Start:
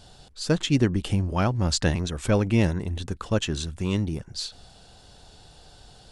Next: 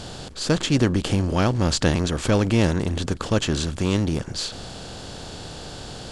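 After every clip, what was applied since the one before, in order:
compressor on every frequency bin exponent 0.6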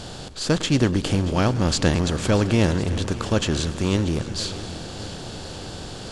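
feedback echo with a long and a short gap by turns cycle 1,056 ms, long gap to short 1.5 to 1, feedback 57%, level −17 dB
feedback echo with a swinging delay time 107 ms, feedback 79%, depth 79 cents, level −19 dB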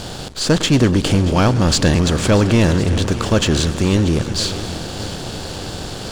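leveller curve on the samples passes 2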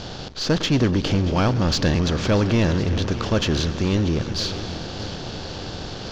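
Butterworth low-pass 6,300 Hz 48 dB per octave
in parallel at −12 dB: gain into a clipping stage and back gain 20.5 dB
on the sum: level −6 dB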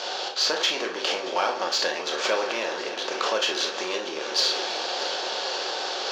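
convolution reverb, pre-delay 5 ms, DRR 1 dB
downward compressor, threshold −20 dBFS, peak gain reduction 9 dB
high-pass filter 480 Hz 24 dB per octave
level +4.5 dB

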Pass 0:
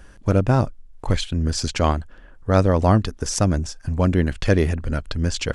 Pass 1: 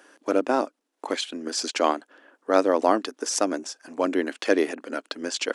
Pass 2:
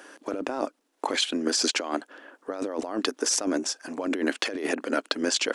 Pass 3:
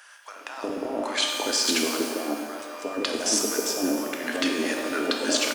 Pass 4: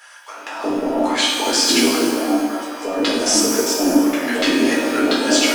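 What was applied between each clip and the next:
elliptic high-pass filter 280 Hz, stop band 70 dB
compressor whose output falls as the input rises −29 dBFS, ratio −1; level +1.5 dB
multiband delay without the direct sound highs, lows 360 ms, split 900 Hz; reverb with rising layers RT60 1.7 s, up +12 semitones, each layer −8 dB, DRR 1.5 dB
in parallel at −11 dB: floating-point word with a short mantissa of 2 bits; on the sum: rectangular room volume 270 cubic metres, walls furnished, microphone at 4.1 metres; level −1.5 dB

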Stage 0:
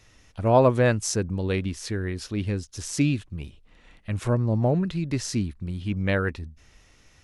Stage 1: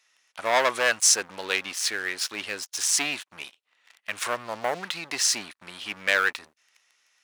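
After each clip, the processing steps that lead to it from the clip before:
leveller curve on the samples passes 3
high-pass filter 1,100 Hz 12 dB per octave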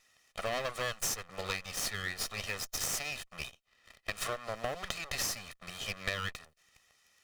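lower of the sound and its delayed copy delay 1.6 ms
downward compressor 6 to 1, threshold −32 dBFS, peak gain reduction 14.5 dB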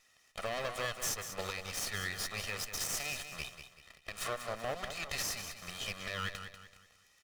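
brickwall limiter −25.5 dBFS, peak gain reduction 11.5 dB
on a send: repeating echo 191 ms, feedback 37%, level −9.5 dB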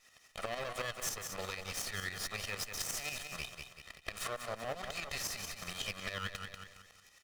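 downward compressor 2 to 1, threshold −45 dBFS, peak gain reduction 7.5 dB
shaped tremolo saw up 11 Hz, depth 65%
level +7.5 dB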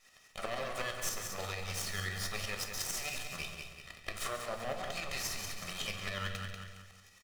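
single-tap delay 138 ms −12 dB
on a send at −5 dB: convolution reverb RT60 0.65 s, pre-delay 5 ms

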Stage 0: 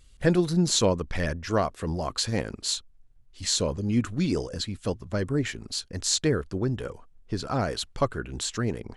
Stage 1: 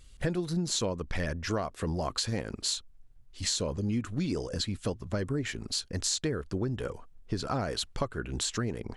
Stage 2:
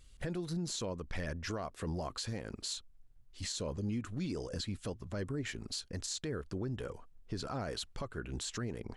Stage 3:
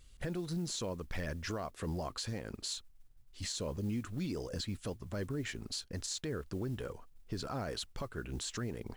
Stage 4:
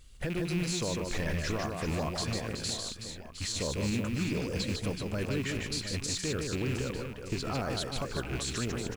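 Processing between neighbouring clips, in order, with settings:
downward compressor 6 to 1, threshold −29 dBFS, peak gain reduction 12.5 dB; level +1.5 dB
brickwall limiter −24 dBFS, peak gain reduction 10 dB; level −5 dB
noise that follows the level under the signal 28 dB
loose part that buzzes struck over −40 dBFS, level −34 dBFS; on a send: reverse bouncing-ball delay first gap 150 ms, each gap 1.5×, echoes 5; on the sum: level +4 dB

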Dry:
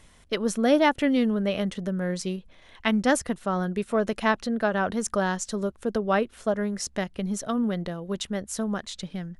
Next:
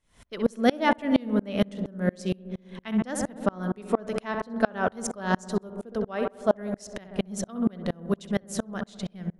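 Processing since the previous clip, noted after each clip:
feedback echo with a low-pass in the loop 65 ms, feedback 85%, low-pass 1,600 Hz, level −10.5 dB
tremolo with a ramp in dB swelling 4.3 Hz, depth 32 dB
level +6 dB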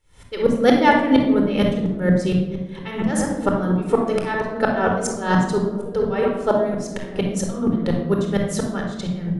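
convolution reverb RT60 0.95 s, pre-delay 25 ms, DRR 2 dB
level +4 dB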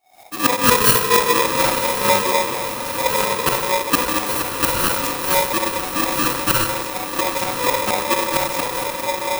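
samples in bit-reversed order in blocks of 32 samples
feedback delay with all-pass diffusion 1,057 ms, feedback 54%, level −9 dB
ring modulator with a square carrier 740 Hz

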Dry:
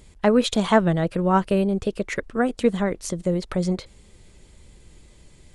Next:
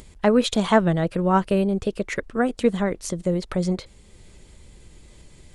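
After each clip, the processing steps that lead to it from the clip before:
upward compression, threshold −41 dBFS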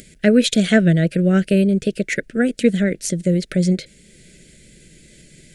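drawn EQ curve 100 Hz 0 dB, 150 Hz +14 dB, 640 Hz +7 dB, 1,000 Hz −26 dB, 1,500 Hz +11 dB, 2,200 Hz +14 dB, 3,200 Hz +11 dB, 9,000 Hz +14 dB
level −6 dB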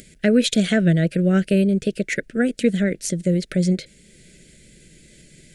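boost into a limiter +4.5 dB
level −6.5 dB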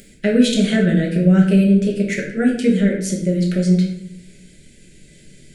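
rectangular room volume 170 cubic metres, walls mixed, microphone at 1.2 metres
level −3 dB

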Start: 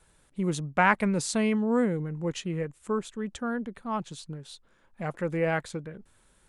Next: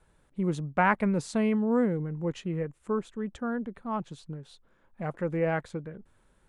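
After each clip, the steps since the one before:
high-shelf EQ 2,700 Hz −12 dB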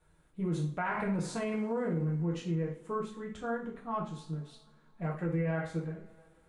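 coupled-rooms reverb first 0.4 s, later 2.9 s, from −27 dB, DRR −3.5 dB
brickwall limiter −17.5 dBFS, peak gain reduction 12 dB
level −7 dB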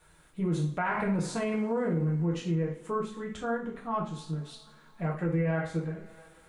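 one half of a high-frequency compander encoder only
level +3.5 dB

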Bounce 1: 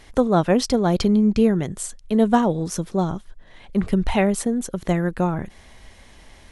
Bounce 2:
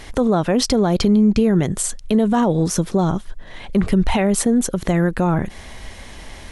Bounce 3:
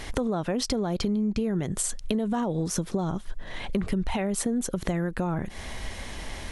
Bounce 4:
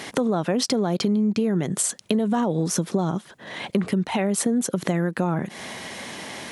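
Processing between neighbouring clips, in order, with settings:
in parallel at 0 dB: downward compressor, threshold −27 dBFS, peak gain reduction 15 dB; on the sum: brickwall limiter −12.5 dBFS, peak gain reduction 10 dB; level +4.5 dB
downward compressor 5 to 1, threshold −25 dBFS, peak gain reduction 12.5 dB
high-pass filter 140 Hz 24 dB per octave; level +5 dB

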